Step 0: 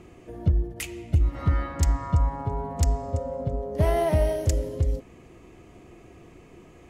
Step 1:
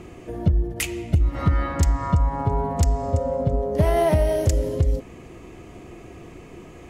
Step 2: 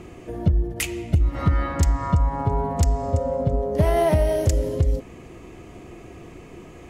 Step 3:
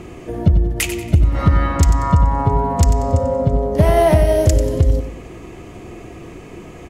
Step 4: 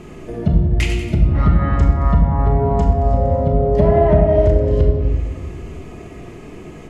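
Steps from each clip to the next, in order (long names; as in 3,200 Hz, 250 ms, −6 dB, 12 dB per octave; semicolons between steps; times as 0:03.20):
downward compressor 4 to 1, threshold −23 dBFS, peak gain reduction 6.5 dB; level +7.5 dB
no processing that can be heard
repeating echo 93 ms, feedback 36%, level −10.5 dB; level +6 dB
treble cut that deepens with the level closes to 1,200 Hz, closed at −8 dBFS; rectangular room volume 770 cubic metres, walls mixed, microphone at 1.4 metres; level −3.5 dB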